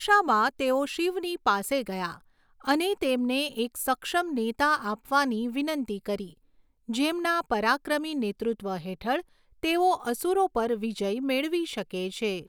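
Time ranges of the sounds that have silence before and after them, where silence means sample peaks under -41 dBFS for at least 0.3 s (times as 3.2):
2.64–6.31
6.89–9.21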